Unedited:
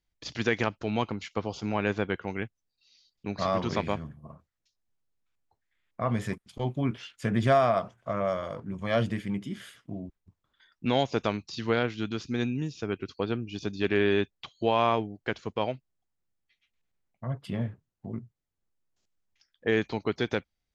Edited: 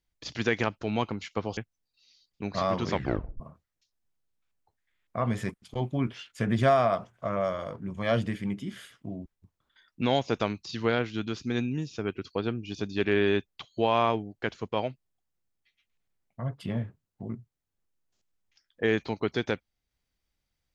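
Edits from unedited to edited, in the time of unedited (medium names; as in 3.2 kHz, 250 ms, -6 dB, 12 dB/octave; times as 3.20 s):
1.57–2.41 s: delete
3.76 s: tape stop 0.48 s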